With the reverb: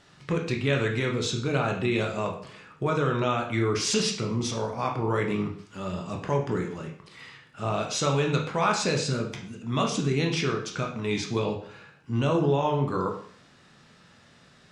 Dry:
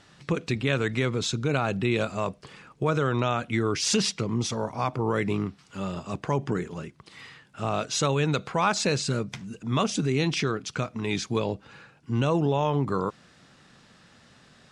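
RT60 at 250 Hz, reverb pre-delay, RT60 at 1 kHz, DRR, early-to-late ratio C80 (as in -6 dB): 0.55 s, 14 ms, 0.55 s, 1.0 dB, 11.0 dB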